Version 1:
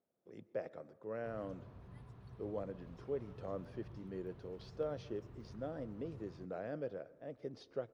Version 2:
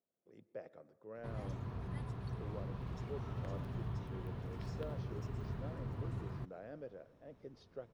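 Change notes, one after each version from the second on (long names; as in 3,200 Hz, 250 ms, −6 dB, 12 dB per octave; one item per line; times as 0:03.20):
speech −7.0 dB
background +12.0 dB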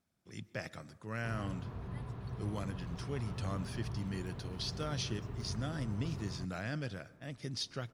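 speech: remove resonant band-pass 490 Hz, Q 2.8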